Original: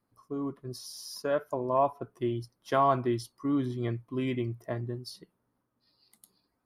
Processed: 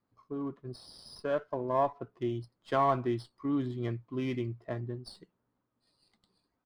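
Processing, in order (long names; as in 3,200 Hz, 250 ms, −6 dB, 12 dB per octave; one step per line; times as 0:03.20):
downsampling to 11,025 Hz
windowed peak hold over 3 samples
level −2.5 dB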